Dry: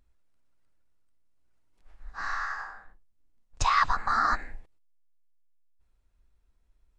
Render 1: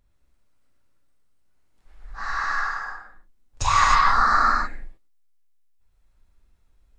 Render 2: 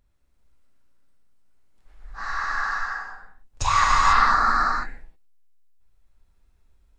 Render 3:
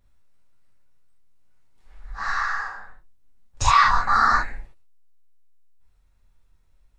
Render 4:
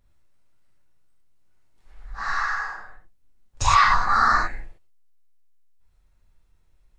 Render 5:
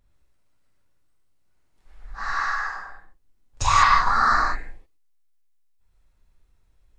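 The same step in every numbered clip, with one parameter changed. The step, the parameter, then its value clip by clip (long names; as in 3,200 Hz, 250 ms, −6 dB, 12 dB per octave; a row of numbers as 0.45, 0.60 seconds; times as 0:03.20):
reverb whose tail is shaped and stops, gate: 340, 520, 100, 140, 220 milliseconds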